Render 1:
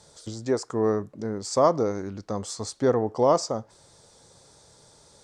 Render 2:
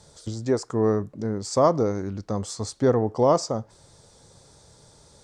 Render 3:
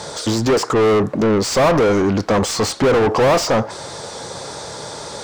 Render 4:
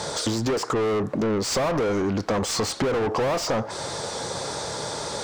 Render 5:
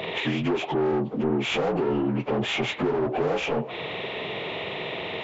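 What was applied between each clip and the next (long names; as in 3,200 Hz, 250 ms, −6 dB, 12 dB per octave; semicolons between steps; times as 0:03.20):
low-shelf EQ 190 Hz +8 dB
mid-hump overdrive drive 37 dB, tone 2,200 Hz, clips at −7 dBFS
downward compressor 5 to 1, threshold −23 dBFS, peak gain reduction 10.5 dB
partials spread apart or drawn together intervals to 76%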